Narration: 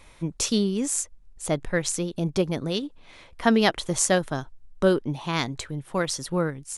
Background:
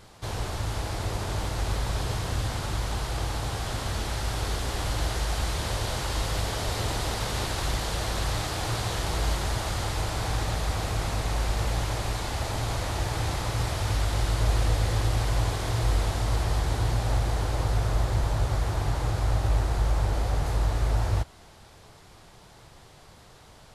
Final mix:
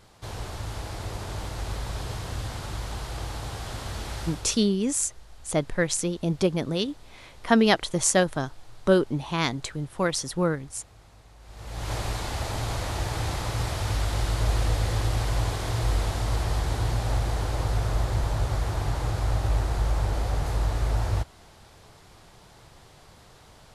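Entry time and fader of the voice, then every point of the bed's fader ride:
4.05 s, +0.5 dB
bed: 4.24 s -4 dB
4.78 s -24.5 dB
11.39 s -24.5 dB
11.92 s -0.5 dB

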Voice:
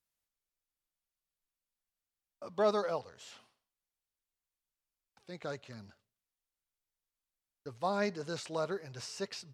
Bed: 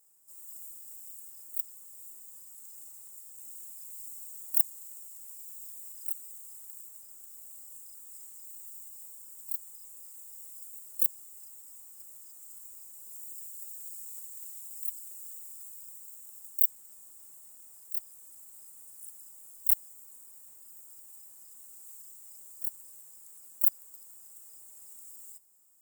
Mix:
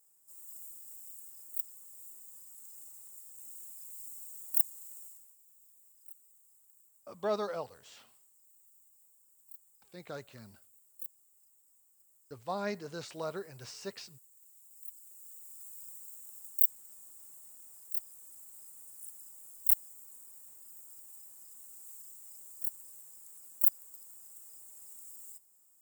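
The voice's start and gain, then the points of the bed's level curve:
4.65 s, -3.0 dB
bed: 5.07 s -2.5 dB
5.37 s -17 dB
14.35 s -17 dB
15.82 s -1 dB

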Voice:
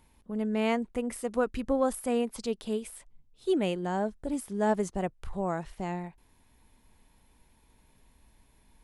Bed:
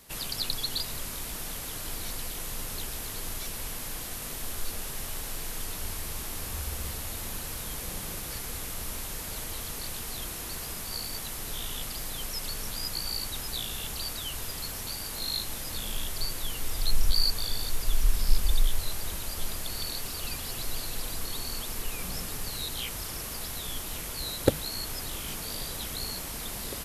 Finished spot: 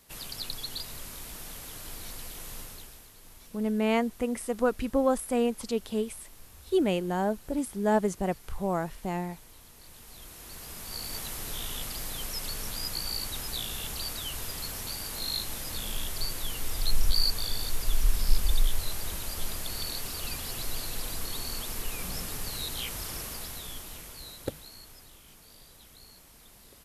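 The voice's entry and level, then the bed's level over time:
3.25 s, +2.0 dB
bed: 2.58 s -5.5 dB
3.12 s -17 dB
9.74 s -17 dB
11.16 s -0.5 dB
23.18 s -0.5 dB
25.22 s -18 dB

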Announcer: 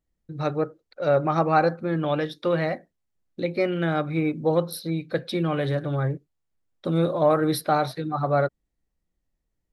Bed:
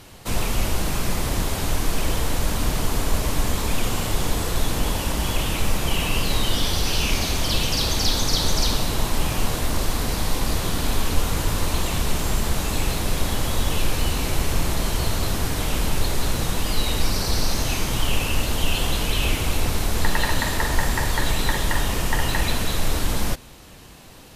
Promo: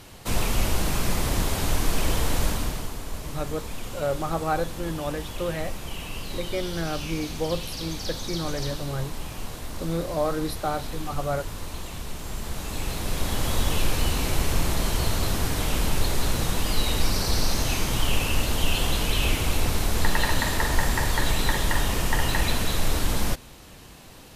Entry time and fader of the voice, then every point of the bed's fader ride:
2.95 s, -6.0 dB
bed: 2.45 s -1 dB
2.97 s -12 dB
12.17 s -12 dB
13.50 s -1.5 dB

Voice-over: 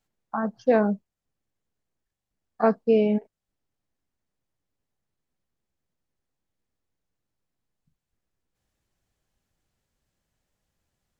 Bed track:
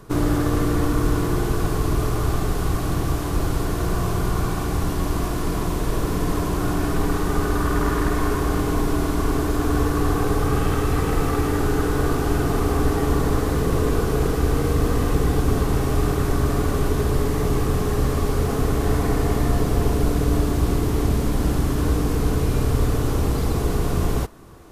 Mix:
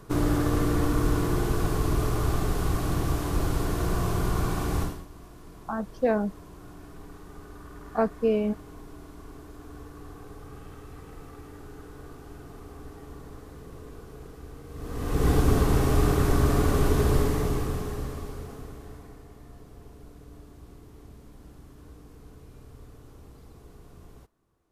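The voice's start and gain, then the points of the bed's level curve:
5.35 s, -4.0 dB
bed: 4.82 s -4 dB
5.07 s -23.5 dB
14.67 s -23.5 dB
15.28 s -1.5 dB
17.16 s -1.5 dB
19.27 s -28 dB

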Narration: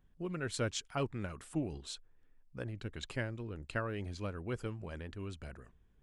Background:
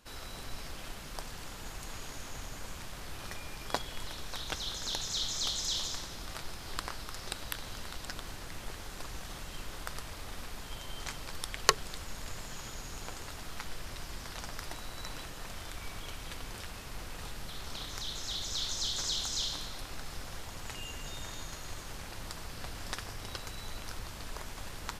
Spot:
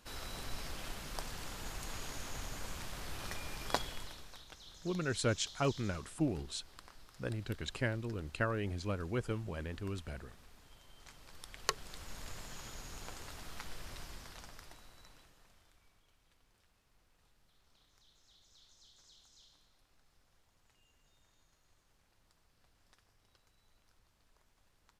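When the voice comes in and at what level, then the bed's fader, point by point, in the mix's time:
4.65 s, +2.5 dB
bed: 3.83 s -0.5 dB
4.51 s -17.5 dB
10.97 s -17.5 dB
12.15 s -5 dB
14.00 s -5 dB
16.05 s -29.5 dB

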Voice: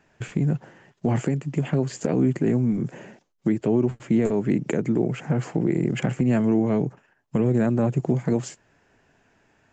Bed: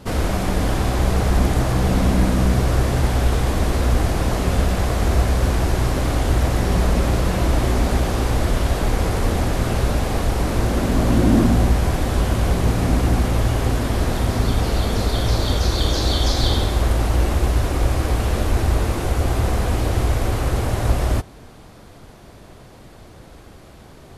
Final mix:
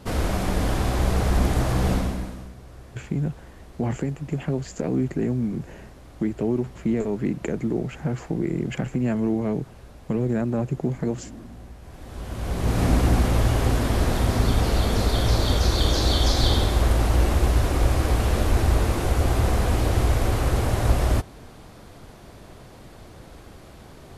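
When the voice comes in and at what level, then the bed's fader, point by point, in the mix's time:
2.75 s, -3.0 dB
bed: 1.92 s -3.5 dB
2.55 s -26 dB
11.79 s -26 dB
12.81 s -1.5 dB

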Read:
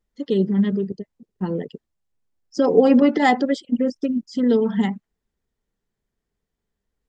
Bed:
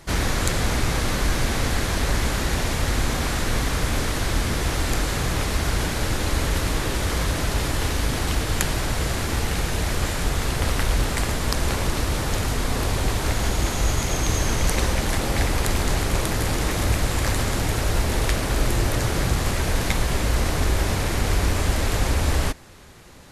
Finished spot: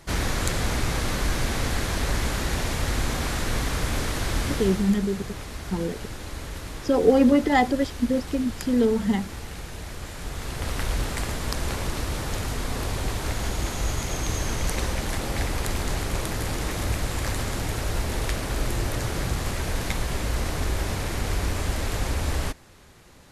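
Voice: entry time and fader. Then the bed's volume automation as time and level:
4.30 s, -3.0 dB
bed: 4.51 s -3 dB
5.00 s -12.5 dB
10.05 s -12.5 dB
10.84 s -5 dB

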